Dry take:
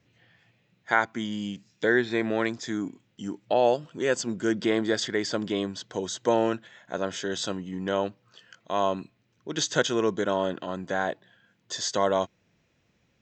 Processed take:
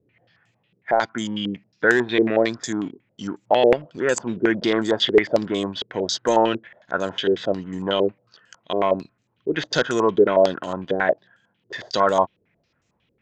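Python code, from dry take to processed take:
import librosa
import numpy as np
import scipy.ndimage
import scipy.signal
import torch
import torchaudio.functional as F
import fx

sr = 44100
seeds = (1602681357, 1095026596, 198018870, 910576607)

y = fx.leveller(x, sr, passes=1)
y = fx.filter_held_lowpass(y, sr, hz=11.0, low_hz=420.0, high_hz=7300.0)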